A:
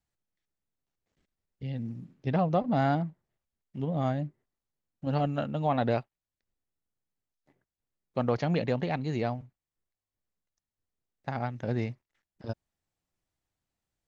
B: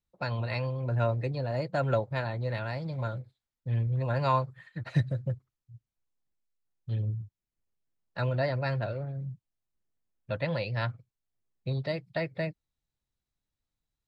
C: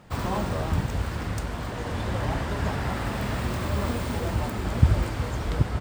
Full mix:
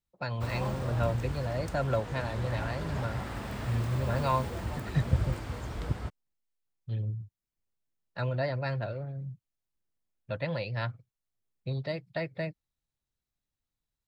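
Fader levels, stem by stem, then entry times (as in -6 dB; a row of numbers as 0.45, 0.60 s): off, -2.0 dB, -8.5 dB; off, 0.00 s, 0.30 s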